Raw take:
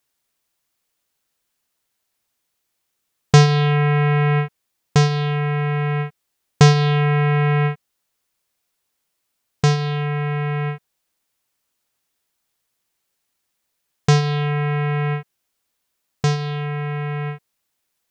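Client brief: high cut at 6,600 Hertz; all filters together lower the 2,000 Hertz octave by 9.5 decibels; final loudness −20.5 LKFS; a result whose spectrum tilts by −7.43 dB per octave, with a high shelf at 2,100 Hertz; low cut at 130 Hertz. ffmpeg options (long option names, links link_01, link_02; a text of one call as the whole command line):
ffmpeg -i in.wav -af "highpass=130,lowpass=6600,equalizer=frequency=2000:width_type=o:gain=-7.5,highshelf=frequency=2100:gain=-7.5,volume=1dB" out.wav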